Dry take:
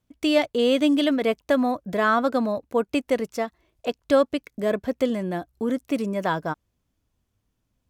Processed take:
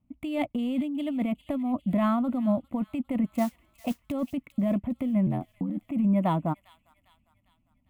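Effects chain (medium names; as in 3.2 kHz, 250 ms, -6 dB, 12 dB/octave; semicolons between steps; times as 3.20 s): local Wiener filter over 9 samples; graphic EQ 250/1000/4000 Hz +10/-6/-11 dB; peak limiter -10.5 dBFS, peak gain reduction 5 dB; compressor with a negative ratio -21 dBFS, ratio -1; 5.26–5.89 s: ring modulator 42 Hz; static phaser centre 1.6 kHz, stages 6; 3.33–4.12 s: modulation noise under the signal 21 dB; on a send: feedback echo behind a high-pass 402 ms, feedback 48%, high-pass 2.8 kHz, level -11 dB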